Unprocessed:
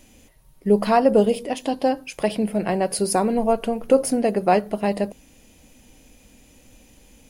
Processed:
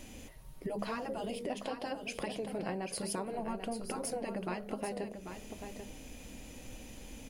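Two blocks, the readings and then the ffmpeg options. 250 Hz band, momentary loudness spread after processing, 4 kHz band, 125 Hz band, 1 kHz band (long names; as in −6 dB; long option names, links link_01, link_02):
−17.0 dB, 12 LU, −10.5 dB, −14.5 dB, −17.5 dB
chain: -filter_complex "[0:a]afftfilt=real='re*lt(hypot(re,im),0.708)':imag='im*lt(hypot(re,im),0.708)':win_size=1024:overlap=0.75,highshelf=frequency=6500:gain=-4.5,acompressor=threshold=-40dB:ratio=5,asplit=2[link_01][link_02];[link_02]aecho=0:1:791:0.376[link_03];[link_01][link_03]amix=inputs=2:normalize=0,volume=3dB"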